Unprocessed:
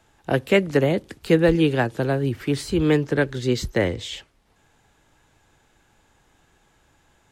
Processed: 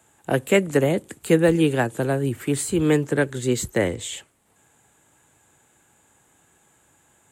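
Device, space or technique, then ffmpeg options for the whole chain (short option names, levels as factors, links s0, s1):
budget condenser microphone: -af "highpass=98,highshelf=f=6400:t=q:w=3:g=7"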